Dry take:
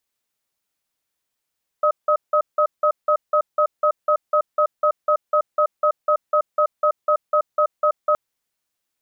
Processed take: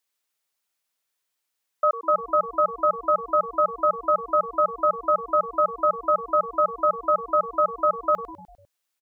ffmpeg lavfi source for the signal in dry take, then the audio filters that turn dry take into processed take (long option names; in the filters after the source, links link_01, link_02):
-f lavfi -i "aevalsrc='0.15*(sin(2*PI*603*t)+sin(2*PI*1270*t))*clip(min(mod(t,0.25),0.08-mod(t,0.25))/0.005,0,1)':duration=6.32:sample_rate=44100"
-filter_complex "[0:a]lowshelf=frequency=360:gain=-11.5,asplit=6[link_01][link_02][link_03][link_04][link_05][link_06];[link_02]adelay=100,afreqshift=-140,volume=-14.5dB[link_07];[link_03]adelay=200,afreqshift=-280,volume=-19.9dB[link_08];[link_04]adelay=300,afreqshift=-420,volume=-25.2dB[link_09];[link_05]adelay=400,afreqshift=-560,volume=-30.6dB[link_10];[link_06]adelay=500,afreqshift=-700,volume=-35.9dB[link_11];[link_01][link_07][link_08][link_09][link_10][link_11]amix=inputs=6:normalize=0"